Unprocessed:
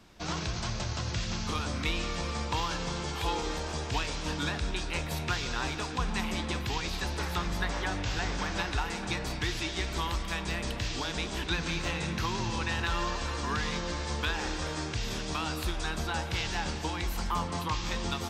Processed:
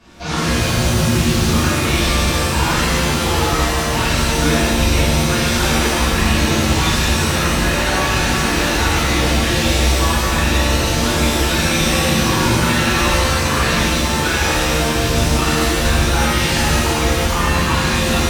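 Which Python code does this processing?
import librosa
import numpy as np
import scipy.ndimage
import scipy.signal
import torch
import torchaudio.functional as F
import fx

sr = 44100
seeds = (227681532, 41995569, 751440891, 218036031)

y = np.clip(x, -10.0 ** (-28.5 / 20.0), 10.0 ** (-28.5 / 20.0))
y = fx.high_shelf(y, sr, hz=10000.0, db=-10.5)
y = fx.rev_shimmer(y, sr, seeds[0], rt60_s=1.3, semitones=7, shimmer_db=-2, drr_db=-10.5)
y = y * 10.0 ** (4.0 / 20.0)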